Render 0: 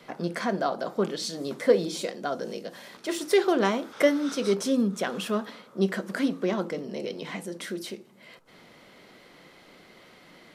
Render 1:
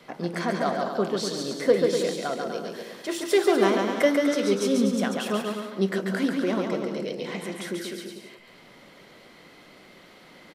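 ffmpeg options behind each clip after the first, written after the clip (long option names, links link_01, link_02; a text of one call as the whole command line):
ffmpeg -i in.wav -af "aecho=1:1:140|245|323.8|382.8|427.1:0.631|0.398|0.251|0.158|0.1" out.wav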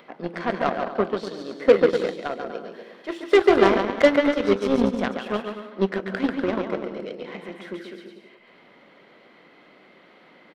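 ffmpeg -i in.wav -filter_complex "[0:a]acrossover=split=170 3500:gain=0.178 1 0.1[link_01][link_02][link_03];[link_01][link_02][link_03]amix=inputs=3:normalize=0,acompressor=mode=upward:threshold=-43dB:ratio=2.5,aeval=exprs='0.355*(cos(1*acos(clip(val(0)/0.355,-1,1)))-cos(1*PI/2))+0.0316*(cos(7*acos(clip(val(0)/0.355,-1,1)))-cos(7*PI/2))':channel_layout=same,volume=5dB" out.wav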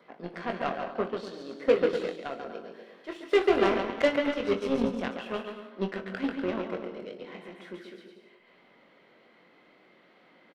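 ffmpeg -i in.wav -filter_complex "[0:a]adynamicequalizer=threshold=0.00398:dfrequency=2700:dqfactor=5.5:tfrequency=2700:tqfactor=5.5:attack=5:release=100:ratio=0.375:range=3:mode=boostabove:tftype=bell,asplit=2[link_01][link_02];[link_02]aecho=0:1:22|61:0.447|0.158[link_03];[link_01][link_03]amix=inputs=2:normalize=0,volume=-8dB" out.wav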